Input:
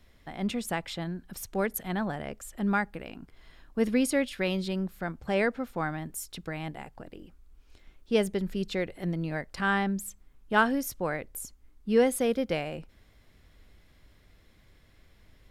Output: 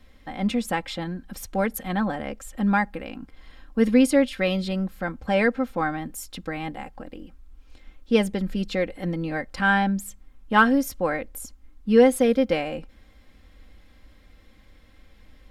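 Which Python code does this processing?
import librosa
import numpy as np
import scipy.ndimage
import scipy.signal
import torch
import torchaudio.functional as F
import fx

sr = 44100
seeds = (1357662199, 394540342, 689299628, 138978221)

y = fx.high_shelf(x, sr, hz=5800.0, db=-6.0)
y = y + 0.6 * np.pad(y, (int(3.8 * sr / 1000.0), 0))[:len(y)]
y = y * librosa.db_to_amplitude(4.5)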